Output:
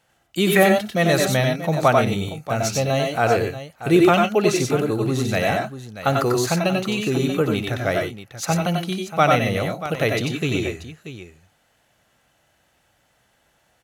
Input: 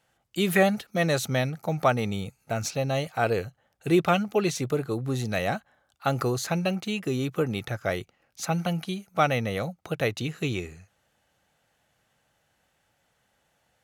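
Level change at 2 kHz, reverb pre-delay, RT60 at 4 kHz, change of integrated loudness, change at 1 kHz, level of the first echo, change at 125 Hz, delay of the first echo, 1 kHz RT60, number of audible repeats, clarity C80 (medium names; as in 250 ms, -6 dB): +7.0 dB, no reverb, no reverb, +7.0 dB, +7.5 dB, -18.5 dB, +6.0 dB, 60 ms, no reverb, 3, no reverb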